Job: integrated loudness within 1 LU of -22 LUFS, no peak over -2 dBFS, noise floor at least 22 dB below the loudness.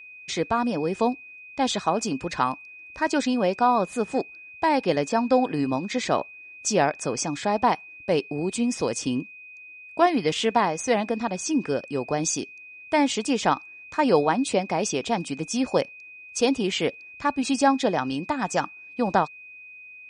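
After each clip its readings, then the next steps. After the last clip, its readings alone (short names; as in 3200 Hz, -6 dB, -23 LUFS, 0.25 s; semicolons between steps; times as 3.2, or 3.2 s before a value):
steady tone 2500 Hz; tone level -42 dBFS; loudness -25.0 LUFS; peak -6.0 dBFS; loudness target -22.0 LUFS
-> notch 2500 Hz, Q 30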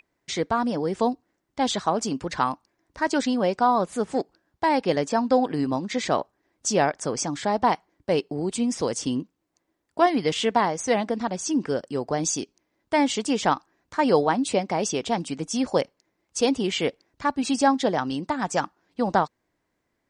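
steady tone none; loudness -25.0 LUFS; peak -6.5 dBFS; loudness target -22.0 LUFS
-> gain +3 dB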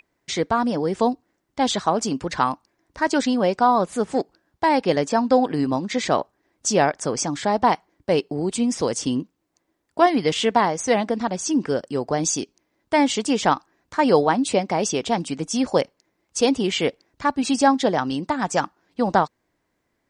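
loudness -22.0 LUFS; peak -3.5 dBFS; noise floor -74 dBFS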